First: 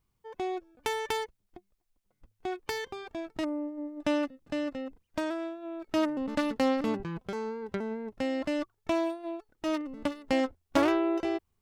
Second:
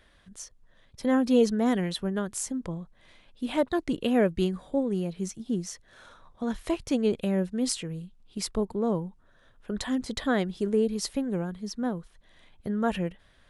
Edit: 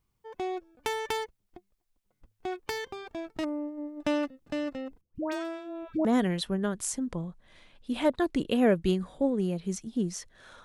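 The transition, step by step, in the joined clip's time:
first
5.01–6.05 dispersion highs, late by 0.144 s, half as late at 850 Hz
6.05 switch to second from 1.58 s

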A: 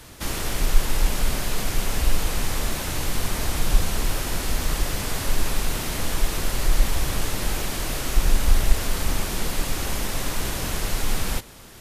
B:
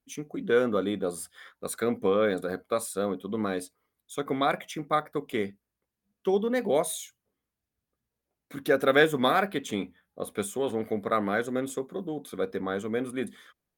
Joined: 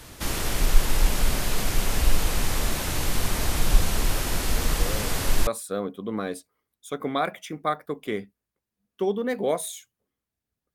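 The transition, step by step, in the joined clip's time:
A
4.48 add B from 1.74 s 0.99 s -12.5 dB
5.47 switch to B from 2.73 s

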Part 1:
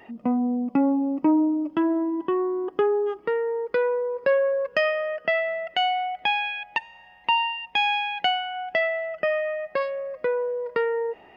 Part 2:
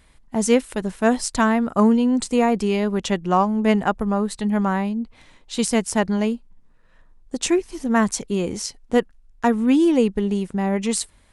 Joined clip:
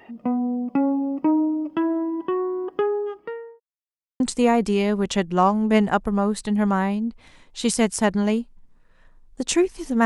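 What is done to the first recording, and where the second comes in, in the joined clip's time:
part 1
2.58–3.6 fade out equal-power
3.6–4.2 mute
4.2 switch to part 2 from 2.14 s

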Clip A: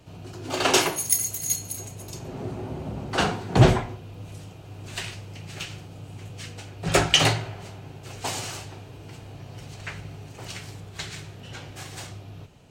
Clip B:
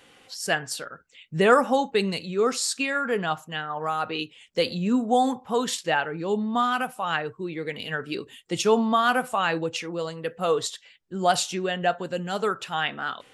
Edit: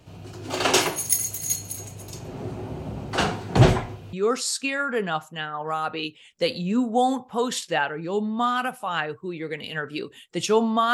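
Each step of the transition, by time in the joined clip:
clip A
4.13 switch to clip B from 2.29 s

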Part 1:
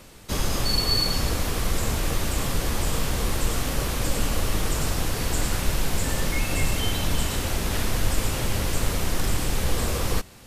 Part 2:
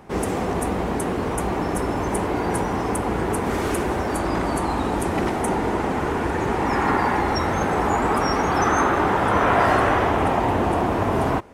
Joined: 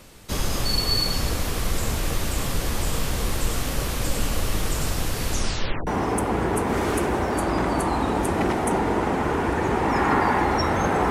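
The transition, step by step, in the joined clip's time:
part 1
5.27 tape stop 0.60 s
5.87 switch to part 2 from 2.64 s

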